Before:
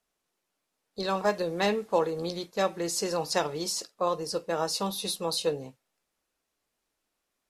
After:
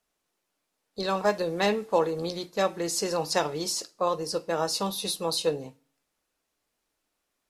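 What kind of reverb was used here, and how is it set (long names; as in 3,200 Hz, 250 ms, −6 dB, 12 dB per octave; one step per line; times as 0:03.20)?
feedback delay network reverb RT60 0.44 s, low-frequency decay 1.35×, high-frequency decay 0.95×, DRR 18 dB
level +1.5 dB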